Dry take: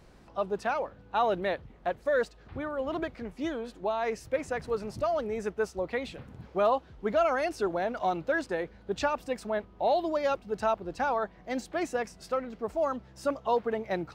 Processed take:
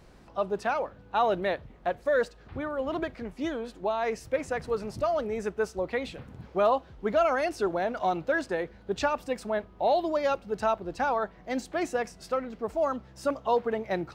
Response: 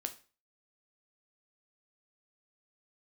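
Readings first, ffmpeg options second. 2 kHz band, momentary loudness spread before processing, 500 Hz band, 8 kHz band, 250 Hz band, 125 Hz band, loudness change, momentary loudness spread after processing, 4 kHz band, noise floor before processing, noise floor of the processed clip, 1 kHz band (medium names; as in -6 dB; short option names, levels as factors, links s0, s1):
+1.5 dB, 8 LU, +1.5 dB, +1.5 dB, +1.5 dB, +1.5 dB, +1.5 dB, 8 LU, +1.5 dB, -55 dBFS, -53 dBFS, +1.5 dB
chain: -filter_complex "[0:a]asplit=2[s0][s1];[1:a]atrim=start_sample=2205[s2];[s1][s2]afir=irnorm=-1:irlink=0,volume=0.224[s3];[s0][s3]amix=inputs=2:normalize=0"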